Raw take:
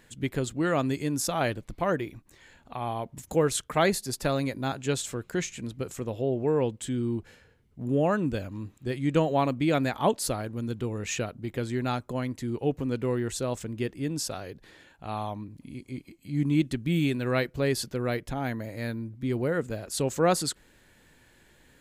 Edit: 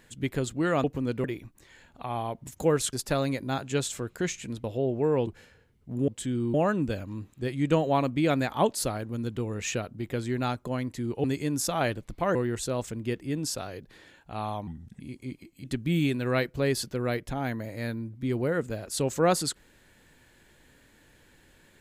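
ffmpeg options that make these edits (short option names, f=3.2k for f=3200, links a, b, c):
-filter_complex "[0:a]asplit=13[a][b][c][d][e][f][g][h][i][j][k][l][m];[a]atrim=end=0.842[n];[b]atrim=start=12.678:end=13.082[o];[c]atrim=start=1.948:end=3.642[p];[d]atrim=start=4.068:end=5.782[q];[e]atrim=start=6.078:end=6.712[r];[f]atrim=start=7.168:end=7.982[s];[g]atrim=start=6.708:end=7.172[t];[h]atrim=start=7.978:end=12.682[u];[i]atrim=start=0.838:end=1.952[v];[j]atrim=start=13.078:end=15.404[w];[k]atrim=start=15.4:end=15.66,asetpts=PTS-STARTPTS,asetrate=34839,aresample=44100[x];[l]atrim=start=15.656:end=16.302[y];[m]atrim=start=16.638[z];[n][o]acrossfade=d=0.004:c1=hsin:c2=hsin[aa];[aa][p]acrossfade=d=0.004:c1=hsin:c2=hsin[ab];[ab][q]acrossfade=d=0.004:c1=hsin:c2=hsin[ac];[ac][r]acrossfade=d=0.004:c1=hsin:c2=hsin[ad];[ad][s]acrossfade=d=0.004:c1=hsin:c2=hsin[ae];[ae][t]acrossfade=d=0.004:c1=hsin:c2=hsin[af];[af][u]acrossfade=d=0.004:c1=hsin:c2=hsin[ag];[ag][v]acrossfade=d=0.004:c1=hsin:c2=hsin[ah];[ah][w]acrossfade=d=0.004:c1=hsin:c2=hsin[ai];[ai][x]acrossfade=d=0.004:c1=hsin:c2=hsin[aj];[aj][y]acrossfade=d=0.004:c1=hsin:c2=hsin[ak];[ak][z]acrossfade=d=0.004:c1=hsin:c2=hsin"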